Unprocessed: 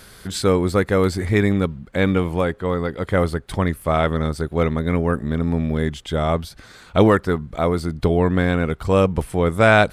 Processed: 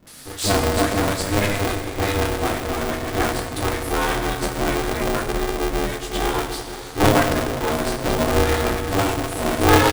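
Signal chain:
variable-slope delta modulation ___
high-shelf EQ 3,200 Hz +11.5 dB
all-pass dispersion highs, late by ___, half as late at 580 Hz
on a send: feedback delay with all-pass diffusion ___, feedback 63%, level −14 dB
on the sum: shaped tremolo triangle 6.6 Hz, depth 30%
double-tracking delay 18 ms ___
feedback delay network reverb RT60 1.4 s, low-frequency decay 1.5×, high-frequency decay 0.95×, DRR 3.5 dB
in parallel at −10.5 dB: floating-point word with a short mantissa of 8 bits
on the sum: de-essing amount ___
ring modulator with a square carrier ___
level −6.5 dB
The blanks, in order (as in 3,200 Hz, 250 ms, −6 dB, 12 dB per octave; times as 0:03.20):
64 kbit/s, 71 ms, 479 ms, −4.5 dB, 20%, 200 Hz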